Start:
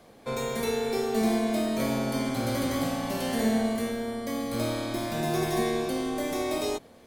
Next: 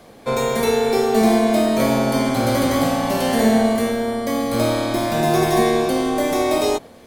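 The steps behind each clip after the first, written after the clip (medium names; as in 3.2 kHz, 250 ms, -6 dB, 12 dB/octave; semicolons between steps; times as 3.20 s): dynamic bell 770 Hz, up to +4 dB, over -40 dBFS, Q 0.85; trim +8.5 dB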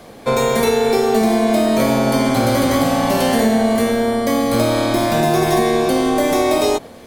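compression, threshold -17 dBFS, peak gain reduction 6.5 dB; trim +5.5 dB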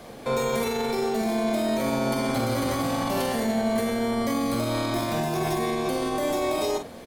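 peak limiter -14.5 dBFS, peak gain reduction 10 dB; doubling 44 ms -7.5 dB; trim -3.5 dB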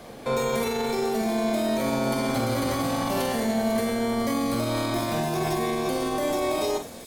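feedback echo behind a high-pass 497 ms, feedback 57%, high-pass 5.4 kHz, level -7 dB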